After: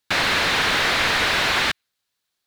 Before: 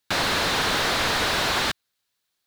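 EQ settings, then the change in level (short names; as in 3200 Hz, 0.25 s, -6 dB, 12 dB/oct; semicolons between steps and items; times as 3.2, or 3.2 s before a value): dynamic EQ 2200 Hz, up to +7 dB, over -40 dBFS, Q 1.1; high shelf 11000 Hz -3 dB; 0.0 dB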